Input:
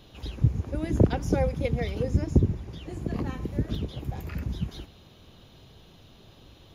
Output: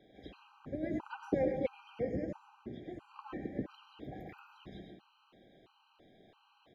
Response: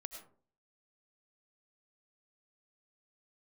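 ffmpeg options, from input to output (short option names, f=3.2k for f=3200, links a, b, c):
-filter_complex "[0:a]asettb=1/sr,asplit=3[a][b][c];[a]atrim=end=1.774[d];[b]atrim=start=1.77:end=2.28,asetpts=PTS-STARTPTS,afade=t=in:d=0.004:c=qsin,afade=t=out:st=0.506:d=0.004:c=qsin,asuperstop=centerf=3800:order=4:qfactor=3.2[e];[c]atrim=start=2.276[f];[d][e]acrossfade=d=0.004:c1=hsin:c2=qsin[g];[g][f]acrossfade=d=0.004:c1=qsin:c2=hsin,acrossover=split=190 3000:gain=0.112 1 0.0891[h][i][j];[h][i][j]amix=inputs=3:normalize=0,aecho=1:1:131|282:0.299|0.112[k];[1:a]atrim=start_sample=2205[l];[k][l]afir=irnorm=-1:irlink=0,afftfilt=real='re*gt(sin(2*PI*1.5*pts/sr)*(1-2*mod(floor(b*sr/1024/790),2)),0)':imag='im*gt(sin(2*PI*1.5*pts/sr)*(1-2*mod(floor(b*sr/1024/790),2)),0)':win_size=1024:overlap=0.75"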